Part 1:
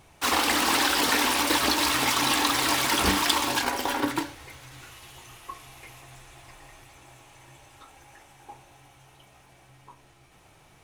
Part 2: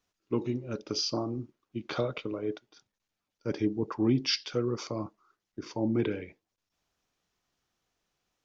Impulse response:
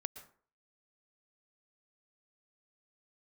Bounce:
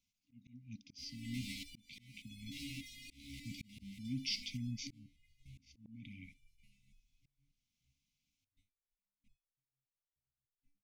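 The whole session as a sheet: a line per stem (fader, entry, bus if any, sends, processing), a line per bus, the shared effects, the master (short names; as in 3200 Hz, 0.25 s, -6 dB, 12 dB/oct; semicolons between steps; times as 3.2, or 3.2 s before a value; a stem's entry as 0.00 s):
-6.0 dB, 0.75 s, no send, gate -47 dBFS, range -33 dB; tilt -3 dB/oct; stepped resonator 3.4 Hz 70–840 Hz
-4.0 dB, 0.00 s, no send, limiter -22.5 dBFS, peak gain reduction 7.5 dB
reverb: off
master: FFT band-reject 290–2000 Hz; auto swell 0.549 s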